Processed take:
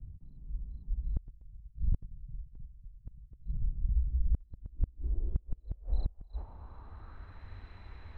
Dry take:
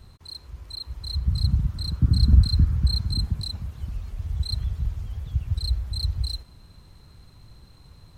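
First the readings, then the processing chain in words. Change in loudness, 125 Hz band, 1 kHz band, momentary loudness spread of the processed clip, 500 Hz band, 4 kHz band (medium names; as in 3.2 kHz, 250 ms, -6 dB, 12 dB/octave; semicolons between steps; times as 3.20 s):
-13.0 dB, -15.0 dB, -6.0 dB, 19 LU, -5.5 dB, under -35 dB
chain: frequency shift -100 Hz; low-pass sweep 150 Hz -> 2 kHz, 4.06–7.58 s; inverted gate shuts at -20 dBFS, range -29 dB; trim +2 dB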